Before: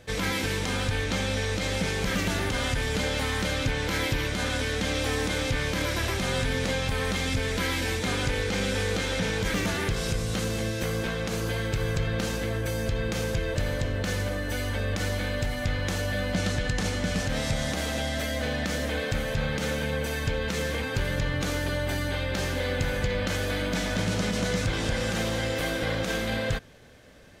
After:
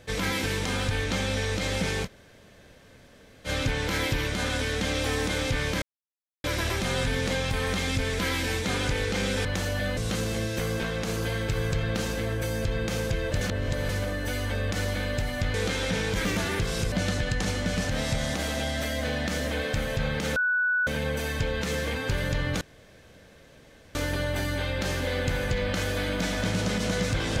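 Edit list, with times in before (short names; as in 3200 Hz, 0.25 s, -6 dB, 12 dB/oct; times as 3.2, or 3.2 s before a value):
2.05–3.47 room tone, crossfade 0.06 s
5.82 insert silence 0.62 s
8.83–10.21 swap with 15.78–16.3
13.65–14.13 reverse
19.74 add tone 1480 Hz -21.5 dBFS 0.51 s
21.48 insert room tone 1.34 s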